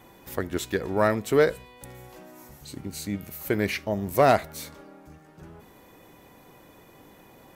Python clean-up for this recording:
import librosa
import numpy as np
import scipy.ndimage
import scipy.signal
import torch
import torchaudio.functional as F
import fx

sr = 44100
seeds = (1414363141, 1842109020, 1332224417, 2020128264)

y = fx.fix_declip(x, sr, threshold_db=-9.5)